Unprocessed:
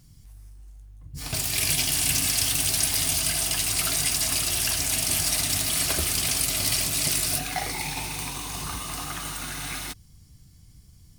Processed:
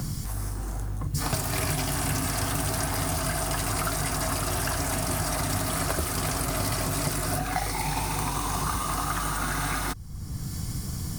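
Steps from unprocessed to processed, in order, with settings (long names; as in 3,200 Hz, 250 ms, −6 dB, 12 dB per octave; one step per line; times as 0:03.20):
high shelf with overshoot 1,900 Hz −12.5 dB, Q 1.5
multiband upward and downward compressor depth 100%
level +5 dB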